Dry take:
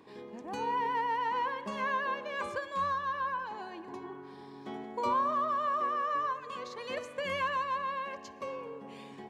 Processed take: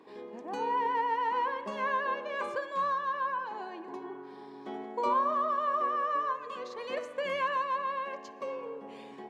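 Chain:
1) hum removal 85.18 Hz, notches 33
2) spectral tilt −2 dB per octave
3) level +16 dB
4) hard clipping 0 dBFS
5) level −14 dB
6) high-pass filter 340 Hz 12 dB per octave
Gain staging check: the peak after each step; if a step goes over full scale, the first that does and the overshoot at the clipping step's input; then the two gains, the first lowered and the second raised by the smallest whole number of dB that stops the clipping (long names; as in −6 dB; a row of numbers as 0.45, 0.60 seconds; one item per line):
−20.5, −19.5, −3.5, −3.5, −17.5, −18.5 dBFS
no step passes full scale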